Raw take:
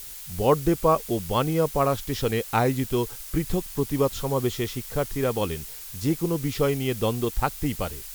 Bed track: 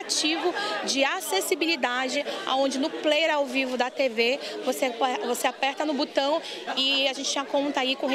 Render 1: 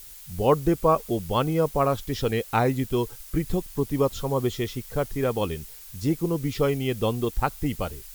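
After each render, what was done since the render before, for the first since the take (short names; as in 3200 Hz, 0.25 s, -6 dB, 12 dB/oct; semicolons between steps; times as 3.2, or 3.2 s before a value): denoiser 6 dB, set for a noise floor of -40 dBFS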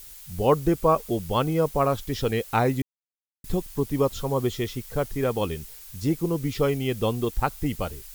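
2.82–3.44 mute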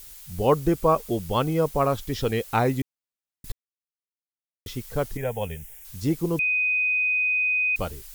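3.52–4.66 mute; 5.17–5.85 fixed phaser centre 1200 Hz, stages 6; 6.39–7.76 bleep 2500 Hz -20 dBFS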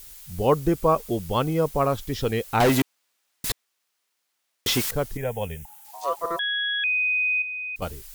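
2.6–4.91 overdrive pedal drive 29 dB, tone 7900 Hz, clips at -12 dBFS; 5.65–6.84 ring modulator 840 Hz; 7.42–7.82 gain -9 dB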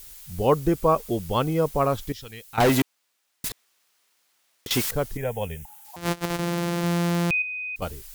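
2.12–2.58 passive tone stack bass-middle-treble 5-5-5; 3.46–4.71 negative-ratio compressor -31 dBFS, ratio -0.5; 5.96–7.31 sample sorter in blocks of 256 samples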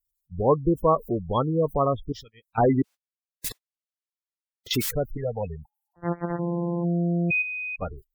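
gate -37 dBFS, range -35 dB; spectral gate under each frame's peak -15 dB strong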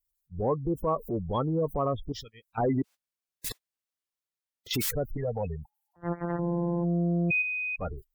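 compressor 3:1, threshold -24 dBFS, peak gain reduction 7.5 dB; transient shaper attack -5 dB, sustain +2 dB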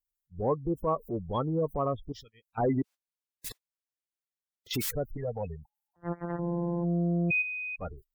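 upward expander 1.5:1, over -39 dBFS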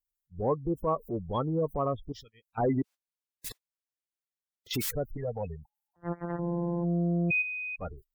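nothing audible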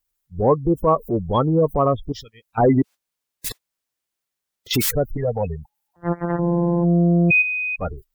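gain +11.5 dB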